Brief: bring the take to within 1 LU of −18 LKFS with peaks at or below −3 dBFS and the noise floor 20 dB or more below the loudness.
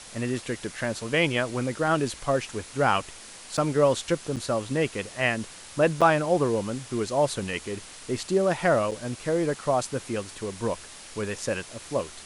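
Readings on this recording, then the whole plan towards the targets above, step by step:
number of dropouts 4; longest dropout 6.5 ms; background noise floor −45 dBFS; target noise floor −47 dBFS; integrated loudness −27.0 LKFS; sample peak −7.0 dBFS; target loudness −18.0 LKFS
→ repair the gap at 0:03.57/0:04.36/0:06.01/0:08.91, 6.5 ms
broadband denoise 6 dB, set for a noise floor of −45 dBFS
level +9 dB
brickwall limiter −3 dBFS

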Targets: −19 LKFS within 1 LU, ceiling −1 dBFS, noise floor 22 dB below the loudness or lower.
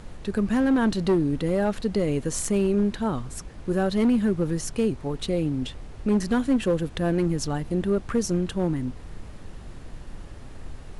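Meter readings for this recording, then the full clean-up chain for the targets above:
share of clipped samples 1.4%; peaks flattened at −16.0 dBFS; background noise floor −41 dBFS; target noise floor −47 dBFS; integrated loudness −25.0 LKFS; sample peak −16.0 dBFS; target loudness −19.0 LKFS
→ clipped peaks rebuilt −16 dBFS
noise reduction from a noise print 6 dB
level +6 dB

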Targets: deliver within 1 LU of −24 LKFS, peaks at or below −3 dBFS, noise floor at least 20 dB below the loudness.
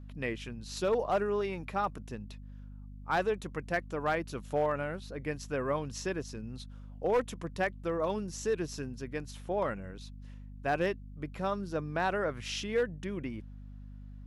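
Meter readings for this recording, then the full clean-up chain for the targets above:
share of clipped samples 0.4%; peaks flattened at −22.0 dBFS; mains hum 50 Hz; hum harmonics up to 250 Hz; level of the hum −44 dBFS; integrated loudness −34.0 LKFS; sample peak −22.0 dBFS; target loudness −24.0 LKFS
→ clipped peaks rebuilt −22 dBFS
hum removal 50 Hz, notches 5
level +10 dB

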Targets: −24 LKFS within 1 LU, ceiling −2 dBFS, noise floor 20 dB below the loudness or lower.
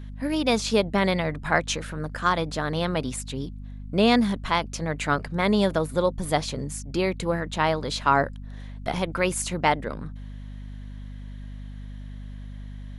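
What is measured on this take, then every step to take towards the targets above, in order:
mains hum 50 Hz; hum harmonics up to 250 Hz; level of the hum −35 dBFS; integrated loudness −25.0 LKFS; sample peak −5.0 dBFS; target loudness −24.0 LKFS
→ mains-hum notches 50/100/150/200/250 Hz
level +1 dB

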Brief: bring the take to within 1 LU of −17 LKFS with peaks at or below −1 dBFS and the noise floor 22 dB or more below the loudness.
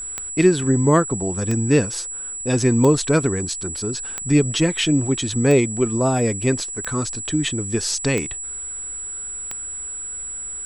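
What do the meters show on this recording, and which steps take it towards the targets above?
number of clicks 8; interfering tone 7,800 Hz; level of the tone −28 dBFS; integrated loudness −21.0 LKFS; sample peak −3.0 dBFS; target loudness −17.0 LKFS
→ click removal
notch filter 7,800 Hz, Q 30
level +4 dB
brickwall limiter −1 dBFS

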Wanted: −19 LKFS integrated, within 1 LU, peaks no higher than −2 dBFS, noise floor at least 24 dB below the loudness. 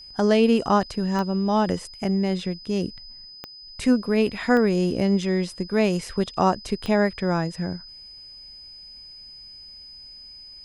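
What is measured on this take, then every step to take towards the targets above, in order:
number of clicks 4; interfering tone 5,000 Hz; level of the tone −41 dBFS; integrated loudness −23.0 LKFS; sample peak −7.0 dBFS; target loudness −19.0 LKFS
→ click removal
notch filter 5,000 Hz, Q 30
level +4 dB

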